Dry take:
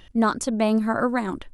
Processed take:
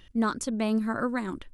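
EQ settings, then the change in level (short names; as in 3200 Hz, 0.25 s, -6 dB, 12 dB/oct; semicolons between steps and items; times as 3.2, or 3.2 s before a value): bell 730 Hz -6.5 dB 0.81 oct; -4.5 dB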